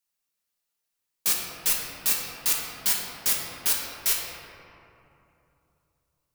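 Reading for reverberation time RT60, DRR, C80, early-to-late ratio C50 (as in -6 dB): 3.0 s, -3.5 dB, 2.0 dB, 0.5 dB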